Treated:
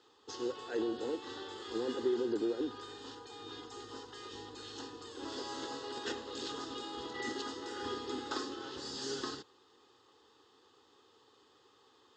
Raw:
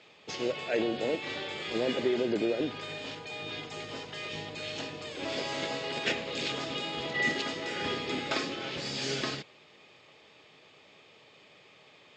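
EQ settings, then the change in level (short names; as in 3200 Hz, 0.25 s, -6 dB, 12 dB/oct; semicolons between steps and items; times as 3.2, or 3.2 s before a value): fixed phaser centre 620 Hz, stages 6; -3.0 dB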